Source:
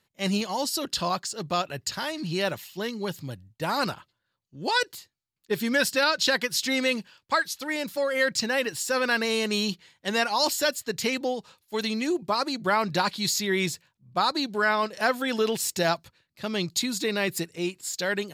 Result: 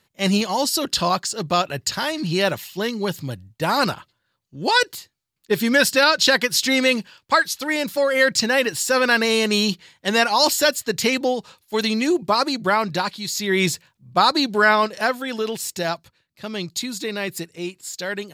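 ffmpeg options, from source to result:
-af "volume=17.5dB,afade=t=out:st=12.42:d=0.85:silence=0.334965,afade=t=in:st=13.27:d=0.41:silence=0.298538,afade=t=out:st=14.73:d=0.47:silence=0.398107"

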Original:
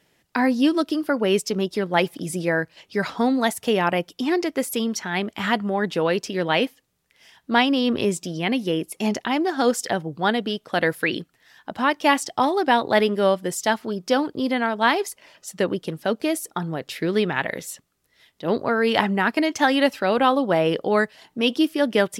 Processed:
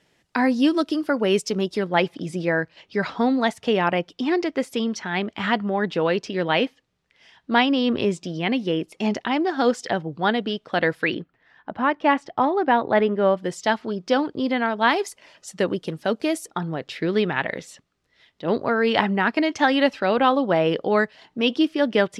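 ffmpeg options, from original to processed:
-af "asetnsamples=n=441:p=0,asendcmd='1.89 lowpass f 4600;11.14 lowpass f 2000;13.37 lowpass f 4700;14.91 lowpass f 8200;16.47 lowpass f 4900',lowpass=8.5k"

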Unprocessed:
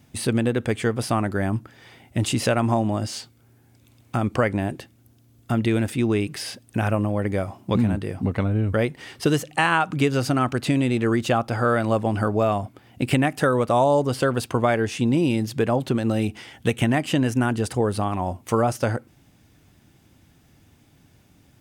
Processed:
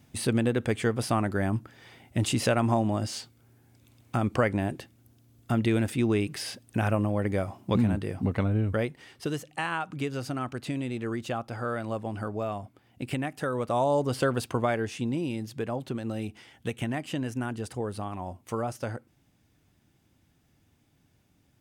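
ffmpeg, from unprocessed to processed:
-af "volume=3.5dB,afade=t=out:st=8.56:d=0.51:silence=0.421697,afade=t=in:st=13.42:d=0.8:silence=0.446684,afade=t=out:st=14.22:d=1.03:silence=0.473151"

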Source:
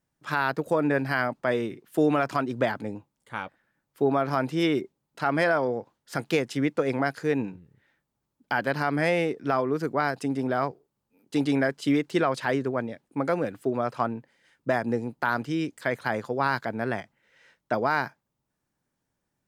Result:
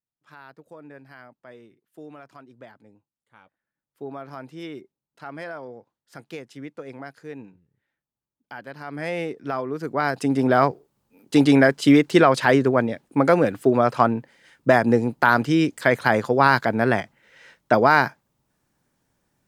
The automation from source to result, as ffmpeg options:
-af "volume=9dB,afade=t=in:st=3.4:d=0.63:silence=0.398107,afade=t=in:st=8.79:d=0.43:silence=0.334965,afade=t=in:st=9.8:d=0.76:silence=0.266073"

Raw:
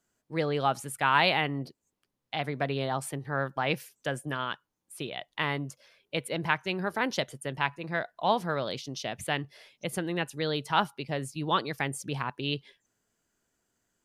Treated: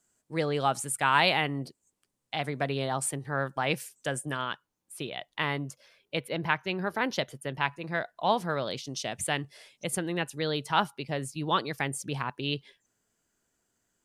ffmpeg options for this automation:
-af "asetnsamples=n=441:p=0,asendcmd='4.41 equalizer g 2;6.2 equalizer g -10;6.81 equalizer g -4;7.63 equalizer g 3.5;8.87 equalizer g 11;9.95 equalizer g 3',equalizer=f=8.3k:t=o:w=0.73:g=10.5"

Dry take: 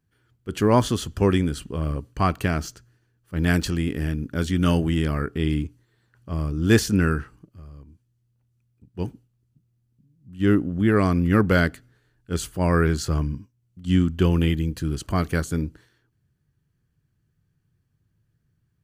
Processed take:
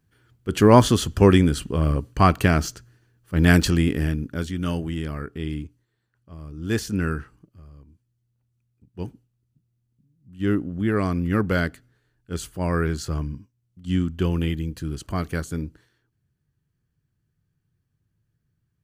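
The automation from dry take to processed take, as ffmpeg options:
-af "volume=15.5dB,afade=t=out:st=3.79:d=0.74:silence=0.281838,afade=t=out:st=5.56:d=0.82:silence=0.398107,afade=t=in:st=6.38:d=0.72:silence=0.298538"

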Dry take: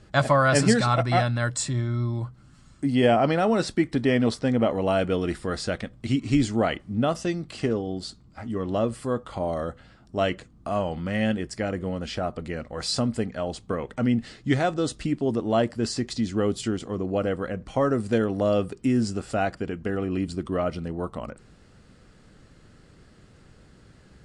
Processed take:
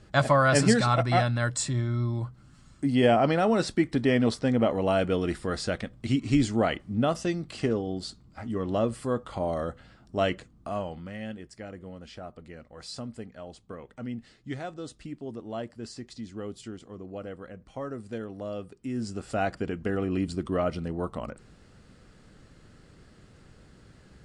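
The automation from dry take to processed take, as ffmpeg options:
-af "volume=10.5dB,afade=t=out:st=10.3:d=0.88:silence=0.266073,afade=t=in:st=18.83:d=0.75:silence=0.251189"

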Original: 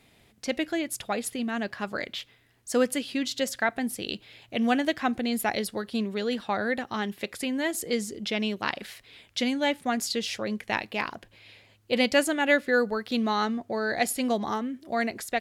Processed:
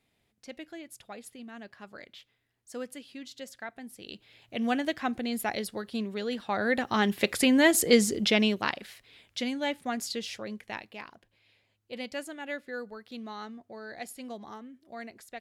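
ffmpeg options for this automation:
-af "volume=7.5dB,afade=t=in:st=3.92:d=0.76:silence=0.298538,afade=t=in:st=6.45:d=0.86:silence=0.266073,afade=t=out:st=8.14:d=0.68:silence=0.237137,afade=t=out:st=10.11:d=0.97:silence=0.334965"

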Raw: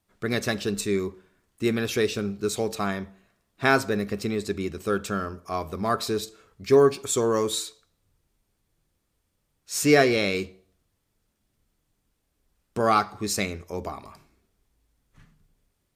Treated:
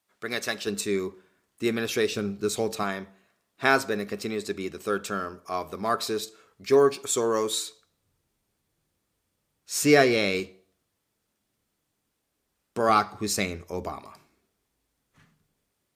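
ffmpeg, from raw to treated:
-af "asetnsamples=n=441:p=0,asendcmd='0.67 highpass f 230;2.12 highpass f 100;2.83 highpass f 310;7.65 highpass f 110;10.4 highpass f 230;12.89 highpass f 63;13.99 highpass f 220',highpass=f=710:p=1"

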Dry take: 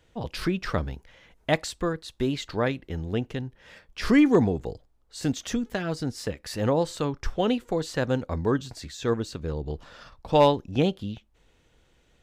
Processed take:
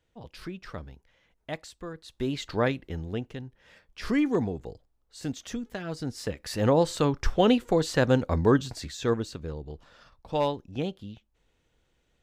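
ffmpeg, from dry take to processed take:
-af "volume=10.5dB,afade=t=in:st=1.87:d=0.75:silence=0.237137,afade=t=out:st=2.62:d=0.67:silence=0.446684,afade=t=in:st=5.8:d=1.27:silence=0.316228,afade=t=out:st=8.55:d=1.12:silence=0.266073"

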